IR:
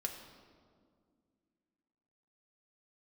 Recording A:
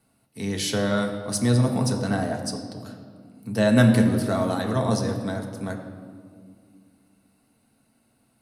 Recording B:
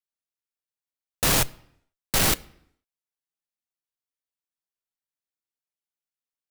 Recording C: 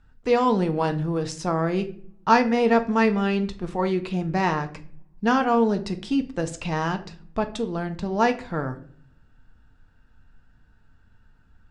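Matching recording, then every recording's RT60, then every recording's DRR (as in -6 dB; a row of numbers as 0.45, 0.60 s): A; 2.1 s, 0.75 s, not exponential; 1.5, 14.0, 6.0 dB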